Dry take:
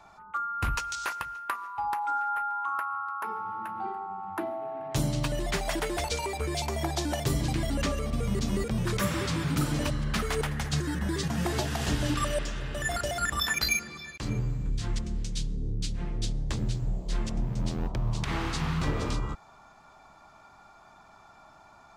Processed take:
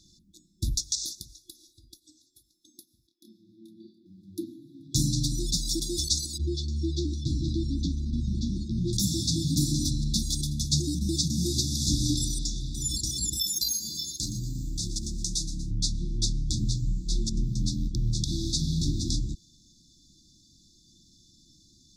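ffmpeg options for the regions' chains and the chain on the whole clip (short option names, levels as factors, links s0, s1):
-filter_complex "[0:a]asettb=1/sr,asplit=3[s0][s1][s2];[s0]atrim=end=1.294[s3];[s1]atrim=start=1.29:end=2.44,asetpts=PTS-STARTPTS,afade=t=in:d=0.004:c=qsin,afade=t=out:st=1.146:d=0.004:c=qsin,aecho=1:1:2.6:0.86,atrim=end_sample=50715,acompressor=threshold=0.02:ratio=3:attack=3.2:release=140:knee=1:detection=peak[s4];[s2]atrim=start=2.436[s5];[s3][s4]acrossfade=d=0.004:c1=hsin:c2=qsin[s6];[s6][s5]acrossfade=d=0.004:c1=qsin:c2=hsin,asettb=1/sr,asplit=3[s7][s8][s9];[s7]atrim=end=3.074[s10];[s8]atrim=start=3.07:end=4.06,asetpts=PTS-STARTPTS,afade=t=in:d=0.004:c=qsin,afade=t=out:st=0.986:d=0.004:c=qsin,acrossover=split=270 3500:gain=0.158 1 0.158[s11][s12][s13];[s11][s12][s13]amix=inputs=3:normalize=0,asplit=2[s14][s15];[s15]adelay=27,volume=0.562[s16];[s14][s16]amix=inputs=2:normalize=0,atrim=end_sample=43659[s17];[s9]atrim=start=4.056[s18];[s10][s17]acrossfade=d=0.004:c1=hsin:c2=qsin[s19];[s19][s18]acrossfade=d=0.004:c1=qsin:c2=hsin,asettb=1/sr,asplit=3[s20][s21][s22];[s20]atrim=end=6.384[s23];[s21]atrim=start=6.38:end=8.93,asetpts=PTS-STARTPTS,afade=t=in:d=0.004:c=qsin,afade=t=out:st=2.546:d=0.004:c=qsin,lowpass=2500,bandreject=f=50:t=h:w=6,bandreject=f=100:t=h:w=6,bandreject=f=150:t=h:w=6,bandreject=f=200:t=h:w=6,bandreject=f=250:t=h:w=6,asplit=2[s24][s25];[s25]adelay=12,volume=0.422[s26];[s24][s26]amix=inputs=2:normalize=0,atrim=end_sample=112455[s27];[s22]atrim=start=8.926[s28];[s23][s27]acrossfade=d=0.004:c1=hsin:c2=qsin[s29];[s29][s28]acrossfade=d=0.004:c1=qsin:c2=hsin,asettb=1/sr,asplit=3[s30][s31][s32];[s30]atrim=end=13.334[s33];[s31]atrim=start=13.33:end=15.71,asetpts=PTS-STARTPTS,afade=t=in:d=0.004:c=qsin,afade=t=out:st=2.376:d=0.004:c=qsin,aemphasis=mode=production:type=50fm,acompressor=threshold=0.0282:ratio=6:attack=3.2:release=140:knee=1:detection=peak,asplit=6[s34][s35][s36][s37][s38][s39];[s35]adelay=119,afreqshift=140,volume=0.224[s40];[s36]adelay=238,afreqshift=280,volume=0.115[s41];[s37]adelay=357,afreqshift=420,volume=0.0582[s42];[s38]adelay=476,afreqshift=560,volume=0.0299[s43];[s39]adelay=595,afreqshift=700,volume=0.0151[s44];[s34][s40][s41][s42][s43][s44]amix=inputs=6:normalize=0,atrim=end_sample=104958[s45];[s32]atrim=start=15.706[s46];[s33][s45]acrossfade=d=0.004:c1=hsin:c2=qsin[s47];[s47][s46]acrossfade=d=0.004:c1=qsin:c2=hsin,equalizer=f=5600:t=o:w=1.1:g=10,afftfilt=real='re*(1-between(b*sr/4096,360,3400))':imag='im*(1-between(b*sr/4096,360,3400))':win_size=4096:overlap=0.75,volume=1.26"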